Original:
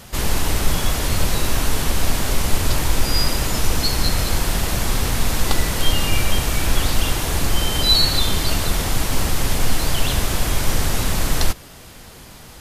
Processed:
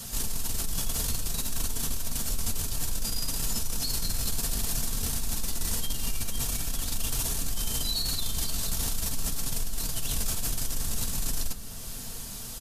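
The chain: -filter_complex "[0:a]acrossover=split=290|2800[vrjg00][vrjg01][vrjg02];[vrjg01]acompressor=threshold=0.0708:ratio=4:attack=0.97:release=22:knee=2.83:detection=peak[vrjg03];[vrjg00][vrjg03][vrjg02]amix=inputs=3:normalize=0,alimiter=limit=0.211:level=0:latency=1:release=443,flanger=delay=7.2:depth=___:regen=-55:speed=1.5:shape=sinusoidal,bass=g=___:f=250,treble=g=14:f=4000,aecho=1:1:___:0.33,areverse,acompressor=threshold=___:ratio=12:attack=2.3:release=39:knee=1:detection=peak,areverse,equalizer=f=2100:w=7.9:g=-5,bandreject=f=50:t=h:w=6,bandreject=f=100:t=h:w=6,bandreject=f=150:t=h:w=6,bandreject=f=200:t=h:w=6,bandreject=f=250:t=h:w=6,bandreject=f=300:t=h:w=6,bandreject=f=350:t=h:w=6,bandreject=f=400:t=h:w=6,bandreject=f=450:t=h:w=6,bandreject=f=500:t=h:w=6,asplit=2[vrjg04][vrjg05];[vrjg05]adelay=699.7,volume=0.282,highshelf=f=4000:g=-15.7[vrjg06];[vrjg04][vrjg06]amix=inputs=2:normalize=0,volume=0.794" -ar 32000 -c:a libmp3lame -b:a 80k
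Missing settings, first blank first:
2, 8, 4.4, 0.0794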